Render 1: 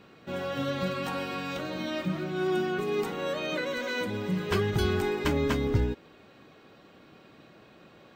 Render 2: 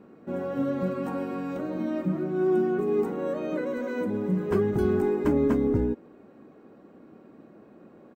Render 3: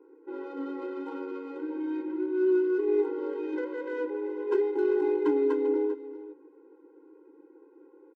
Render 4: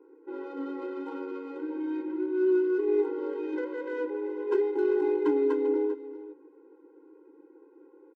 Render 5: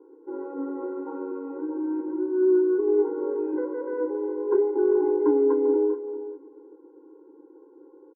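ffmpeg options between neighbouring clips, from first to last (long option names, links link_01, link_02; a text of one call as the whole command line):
ffmpeg -i in.wav -af "firequalizer=gain_entry='entry(130,0);entry(220,11);entry(640,4);entry(3400,-16);entry(8000,-5)':delay=0.05:min_phase=1,volume=-3.5dB" out.wav
ffmpeg -i in.wav -af "adynamicsmooth=sensitivity=4.5:basefreq=1300,aecho=1:1:395:0.2,afftfilt=real='re*eq(mod(floor(b*sr/1024/270),2),1)':imag='im*eq(mod(floor(b*sr/1024/270),2),1)':win_size=1024:overlap=0.75" out.wav
ffmpeg -i in.wav -af anull out.wav
ffmpeg -i in.wav -af "lowpass=frequency=1200:width=0.5412,lowpass=frequency=1200:width=1.3066,aecho=1:1:429:0.178,volume=4dB" out.wav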